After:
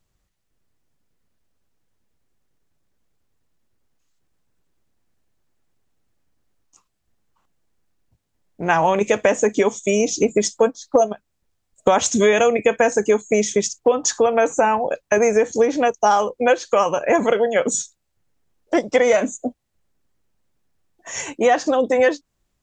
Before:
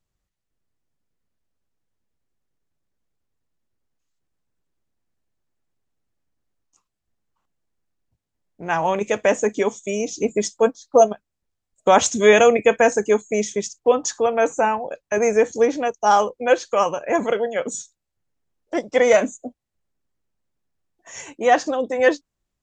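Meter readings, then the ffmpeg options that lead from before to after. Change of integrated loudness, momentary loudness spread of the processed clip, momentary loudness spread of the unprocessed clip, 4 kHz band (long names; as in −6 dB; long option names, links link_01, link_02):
+1.0 dB, 7 LU, 12 LU, +1.0 dB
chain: -af "acompressor=threshold=-21dB:ratio=6,volume=8dB"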